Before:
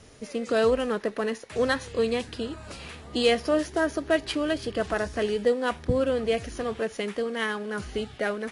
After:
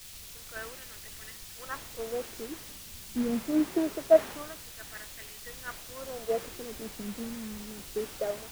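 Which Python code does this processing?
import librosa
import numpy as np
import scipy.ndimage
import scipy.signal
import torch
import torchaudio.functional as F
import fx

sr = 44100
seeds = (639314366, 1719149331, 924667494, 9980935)

y = fx.wah_lfo(x, sr, hz=0.24, low_hz=210.0, high_hz=2100.0, q=3.4)
y = fx.quant_dither(y, sr, seeds[0], bits=6, dither='triangular')
y = fx.tilt_eq(y, sr, slope=-2.0)
y = fx.band_widen(y, sr, depth_pct=100)
y = y * librosa.db_to_amplitude(-3.5)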